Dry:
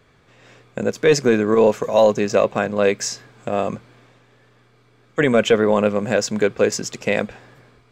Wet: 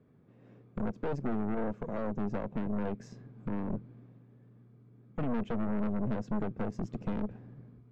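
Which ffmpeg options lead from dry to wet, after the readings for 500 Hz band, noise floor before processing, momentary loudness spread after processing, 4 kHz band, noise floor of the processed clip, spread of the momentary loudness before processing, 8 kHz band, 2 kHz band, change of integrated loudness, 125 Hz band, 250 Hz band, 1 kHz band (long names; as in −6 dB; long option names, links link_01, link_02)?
−22.5 dB, −56 dBFS, 13 LU, below −30 dB, −60 dBFS, 11 LU, below −35 dB, −24.0 dB, −17.0 dB, −8.5 dB, −10.5 dB, −16.5 dB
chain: -af "asubboost=boost=2.5:cutoff=220,acompressor=threshold=-23dB:ratio=3,bandpass=frequency=210:width_type=q:width=1.5:csg=0,aeval=exprs='0.158*(cos(1*acos(clip(val(0)/0.158,-1,1)))-cos(1*PI/2))+0.0447*(cos(4*acos(clip(val(0)/0.158,-1,1)))-cos(4*PI/2))+0.00794*(cos(8*acos(clip(val(0)/0.158,-1,1)))-cos(8*PI/2))':channel_layout=same,asoftclip=type=tanh:threshold=-25dB"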